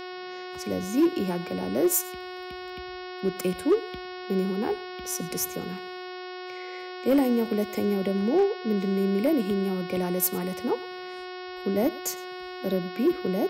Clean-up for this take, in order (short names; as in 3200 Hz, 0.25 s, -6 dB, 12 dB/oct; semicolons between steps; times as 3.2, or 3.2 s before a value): clip repair -15.5 dBFS; de-hum 365.5 Hz, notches 15; inverse comb 0.107 s -21.5 dB